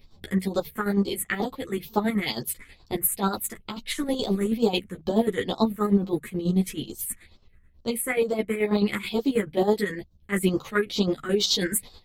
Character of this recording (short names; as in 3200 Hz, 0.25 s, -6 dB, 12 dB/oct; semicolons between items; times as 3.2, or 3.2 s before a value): phasing stages 4, 2.2 Hz, lowest notch 750–2000 Hz; chopped level 9.3 Hz, depth 60%, duty 45%; a shimmering, thickened sound